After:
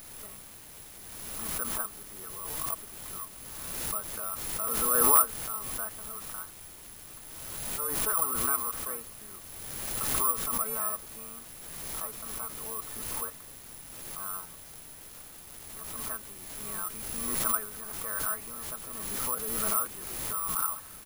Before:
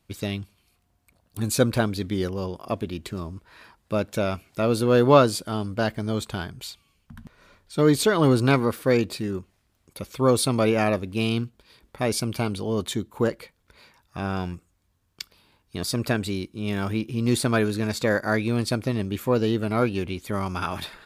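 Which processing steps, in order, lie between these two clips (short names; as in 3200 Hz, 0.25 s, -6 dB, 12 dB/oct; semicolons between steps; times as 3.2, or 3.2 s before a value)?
band-pass 1200 Hz, Q 8.1; air absorption 500 m; comb 4.6 ms, depth 70%; added noise pink -54 dBFS; careless resampling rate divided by 4×, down none, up zero stuff; crackling interface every 0.49 s, samples 512, repeat, from 0.74; backwards sustainer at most 26 dB/s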